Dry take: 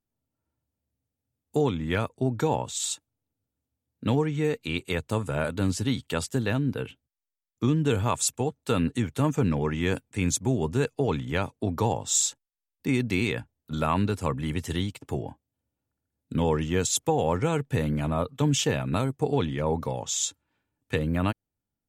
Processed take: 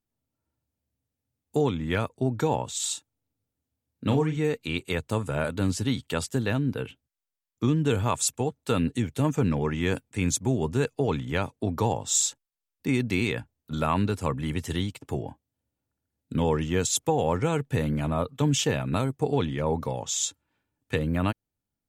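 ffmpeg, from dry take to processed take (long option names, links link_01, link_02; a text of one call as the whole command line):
ffmpeg -i in.wav -filter_complex "[0:a]asettb=1/sr,asplit=3[link_01][link_02][link_03];[link_01]atrim=end=2.824[link_04];[link_02]atrim=start=2.82:end=4.37,asetpts=PTS-STARTPTS,afade=type=in:duration=0.004:curve=qsin,afade=type=out:start_time=1.546:duration=0.004:curve=qsin,asplit=2[link_05][link_06];[link_06]adelay=38,volume=-8dB[link_07];[link_05][link_07]amix=inputs=2:normalize=0,atrim=end_sample=68355[link_08];[link_03]atrim=start=4.366[link_09];[link_04][link_08]acrossfade=duration=0.004:curve1=hsin:curve2=qsin[link_10];[link_10][link_09]acrossfade=duration=0.004:curve1=qsin:curve2=hsin,asettb=1/sr,asplit=3[link_11][link_12][link_13];[link_11]atrim=end=8.784[link_14];[link_12]atrim=start=8.78:end=9.25,asetpts=PTS-STARTPTS,afade=type=in:duration=0.004:curve=qsin,afade=type=out:start_time=0.466:duration=0.004:curve=qsin,equalizer=frequency=1200:width=1.5:gain=-6[link_15];[link_13]atrim=start=9.246[link_16];[link_14][link_15]acrossfade=duration=0.004:curve1=hsin:curve2=qsin[link_17];[link_17][link_16]acrossfade=duration=0.004:curve1=qsin:curve2=hsin" out.wav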